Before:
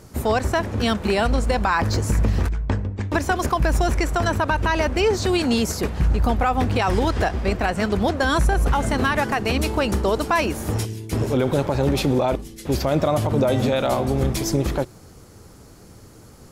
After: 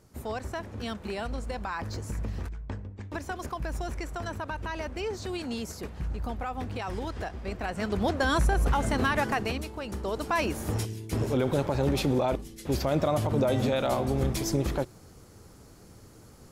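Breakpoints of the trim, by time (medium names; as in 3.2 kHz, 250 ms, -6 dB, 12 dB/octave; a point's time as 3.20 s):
7.41 s -14 dB
8.12 s -5.5 dB
9.41 s -5.5 dB
9.71 s -17 dB
10.44 s -6 dB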